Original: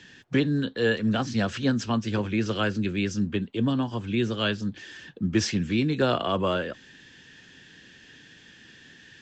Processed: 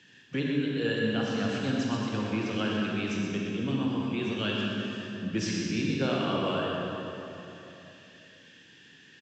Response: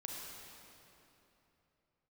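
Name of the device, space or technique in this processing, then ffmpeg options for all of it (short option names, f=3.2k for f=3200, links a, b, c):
PA in a hall: -filter_complex "[0:a]highpass=100,equalizer=f=2.7k:t=o:w=0.35:g=4.5,aecho=1:1:123:0.422[a];[1:a]atrim=start_sample=2205[b];[a][b]afir=irnorm=-1:irlink=0,volume=-3.5dB"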